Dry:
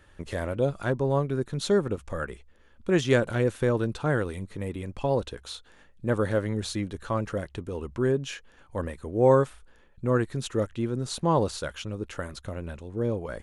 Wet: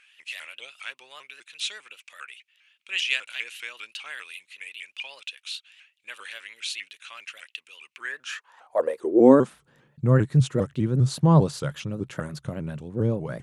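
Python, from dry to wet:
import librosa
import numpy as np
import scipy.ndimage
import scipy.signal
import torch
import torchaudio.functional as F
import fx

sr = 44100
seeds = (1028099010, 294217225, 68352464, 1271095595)

y = fx.filter_sweep_highpass(x, sr, from_hz=2600.0, to_hz=140.0, start_s=7.9, end_s=9.66, q=6.3)
y = fx.vibrato_shape(y, sr, shape='saw_up', rate_hz=5.0, depth_cents=160.0)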